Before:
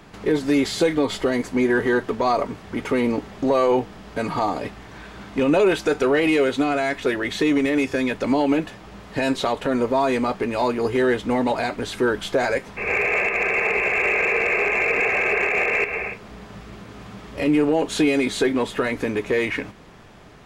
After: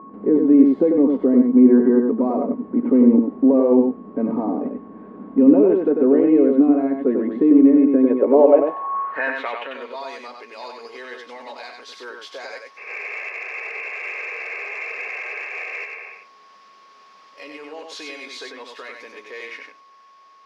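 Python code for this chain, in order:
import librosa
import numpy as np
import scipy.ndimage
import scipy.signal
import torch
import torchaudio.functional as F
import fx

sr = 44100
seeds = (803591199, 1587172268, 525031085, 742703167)

p1 = x + 10.0 ** (-28.0 / 20.0) * np.sin(2.0 * np.pi * 1100.0 * np.arange(len(x)) / sr)
p2 = fx.filter_sweep_bandpass(p1, sr, from_hz=240.0, to_hz=5200.0, start_s=7.86, end_s=10.1, q=3.2)
p3 = fx.graphic_eq_10(p2, sr, hz=(125, 250, 500, 1000, 2000, 4000, 8000), db=(-7, 6, 10, 6, 4, -3, -11))
p4 = p3 + fx.echo_single(p3, sr, ms=95, db=-4.5, dry=0)
y = p4 * 10.0 ** (3.5 / 20.0)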